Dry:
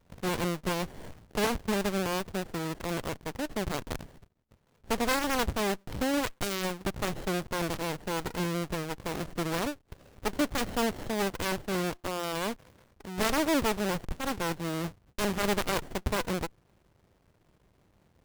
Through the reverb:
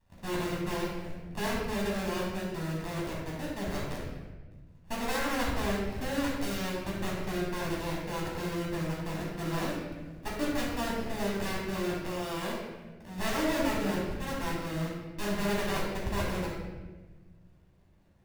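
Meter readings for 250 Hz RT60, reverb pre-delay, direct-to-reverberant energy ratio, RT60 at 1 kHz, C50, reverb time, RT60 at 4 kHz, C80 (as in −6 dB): 2.0 s, 10 ms, −5.5 dB, 1.1 s, 0.0 dB, 1.3 s, 0.90 s, 2.5 dB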